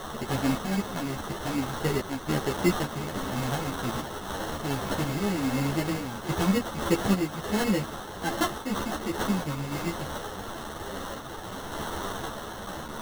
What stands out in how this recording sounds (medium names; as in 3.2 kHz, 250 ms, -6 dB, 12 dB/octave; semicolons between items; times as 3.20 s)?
a quantiser's noise floor 6-bit, dither triangular; random-step tremolo; aliases and images of a low sample rate 2.4 kHz, jitter 0%; a shimmering, thickened sound